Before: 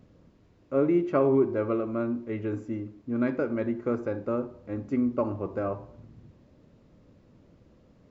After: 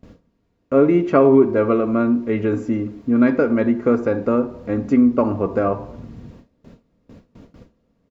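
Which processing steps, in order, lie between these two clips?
gate with hold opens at -46 dBFS; comb 4.3 ms, depth 33%; in parallel at 0 dB: compressor, threshold -34 dBFS, peak gain reduction 15.5 dB; on the sum: gain +8 dB

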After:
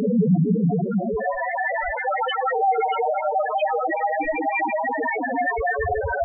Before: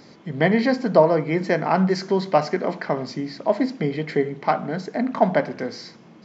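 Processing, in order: spectral trails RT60 2.93 s; wavefolder -13.5 dBFS; Paulstretch 42×, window 0.05 s, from 0.94; soft clip -6.5 dBFS, distortion -27 dB; loudest bins only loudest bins 2; gain +8 dB

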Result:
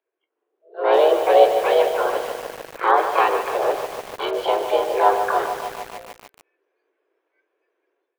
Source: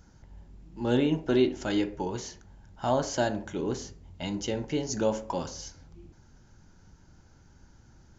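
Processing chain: spectral noise reduction 22 dB; high shelf 2600 Hz -2 dB; AGC gain up to 12 dB; harmoniser +5 st -7 dB, +7 st -3 dB; mistuned SSB +180 Hz 190–3400 Hz; lo-fi delay 0.148 s, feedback 80%, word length 5-bit, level -8.5 dB; gain -3 dB

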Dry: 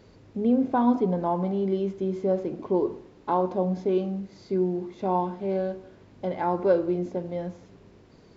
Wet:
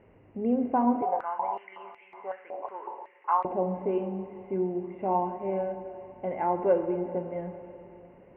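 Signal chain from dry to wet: rippled Chebyshev low-pass 2900 Hz, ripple 6 dB; reverb RT60 3.5 s, pre-delay 5 ms, DRR 9.5 dB; 1.02–3.45 stepped high-pass 5.4 Hz 750–2200 Hz

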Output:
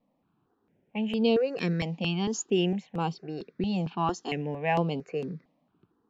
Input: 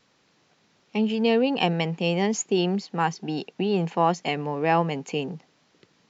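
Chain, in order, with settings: low-pass opened by the level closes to 950 Hz, open at -18.5 dBFS; bell 900 Hz -4.5 dB 0.72 oct; step phaser 4.4 Hz 400–6400 Hz; gain -1 dB

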